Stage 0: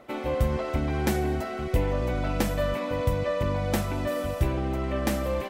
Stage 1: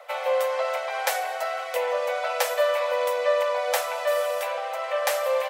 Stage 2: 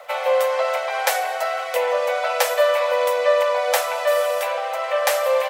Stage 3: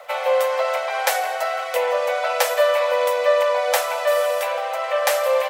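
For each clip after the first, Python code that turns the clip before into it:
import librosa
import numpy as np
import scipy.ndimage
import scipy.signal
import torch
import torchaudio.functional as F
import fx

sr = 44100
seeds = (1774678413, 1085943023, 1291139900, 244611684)

y1 = scipy.signal.sosfilt(scipy.signal.butter(16, 490.0, 'highpass', fs=sr, output='sos'), x)
y1 = F.gain(torch.from_numpy(y1), 6.5).numpy()
y2 = fx.dmg_crackle(y1, sr, seeds[0], per_s=600.0, level_db=-53.0)
y2 = F.gain(torch.from_numpy(y2), 5.0).numpy()
y3 = y2 + 10.0 ** (-20.5 / 20.0) * np.pad(y2, (int(167 * sr / 1000.0), 0))[:len(y2)]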